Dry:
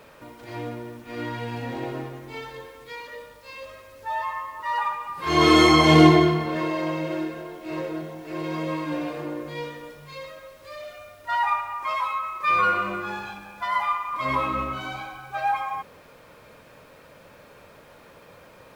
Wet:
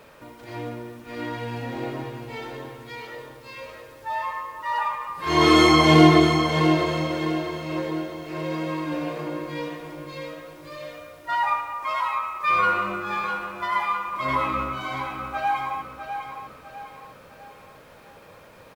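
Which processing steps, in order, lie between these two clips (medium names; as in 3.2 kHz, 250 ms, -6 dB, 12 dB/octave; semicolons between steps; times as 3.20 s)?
feedback delay 654 ms, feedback 41%, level -8 dB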